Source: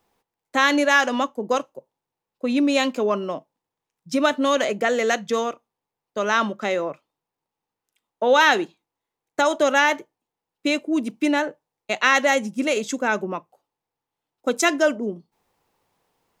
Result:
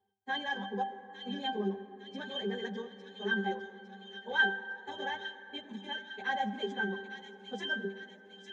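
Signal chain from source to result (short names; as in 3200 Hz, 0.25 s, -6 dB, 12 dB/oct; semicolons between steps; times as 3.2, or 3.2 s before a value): LPF 8100 Hz 12 dB/oct; plain phase-vocoder stretch 0.52×; low shelf 140 Hz -6.5 dB; in parallel at -6 dB: soft clip -19.5 dBFS, distortion -12 dB; on the sum: high shelf 2000 Hz +10.5 dB; octave resonator G, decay 0.28 s; thin delay 0.856 s, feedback 53%, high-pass 2700 Hz, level -6 dB; on a send at -12.5 dB: reverb RT60 4.2 s, pre-delay 68 ms; on the sum: gain +4.5 dB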